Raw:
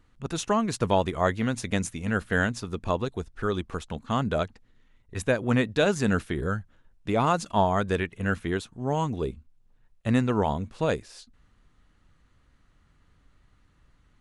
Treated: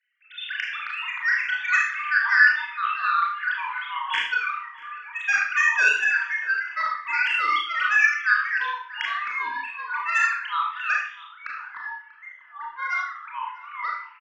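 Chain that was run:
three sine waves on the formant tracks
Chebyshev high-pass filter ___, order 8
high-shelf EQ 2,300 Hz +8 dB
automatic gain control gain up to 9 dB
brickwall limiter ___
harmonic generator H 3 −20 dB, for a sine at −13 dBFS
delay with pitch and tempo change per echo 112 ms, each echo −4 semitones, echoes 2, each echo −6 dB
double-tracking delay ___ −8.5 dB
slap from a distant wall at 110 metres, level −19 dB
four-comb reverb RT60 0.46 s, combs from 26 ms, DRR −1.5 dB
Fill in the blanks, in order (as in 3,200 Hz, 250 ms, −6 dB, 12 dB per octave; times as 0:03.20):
1,500 Hz, −13 dBFS, 36 ms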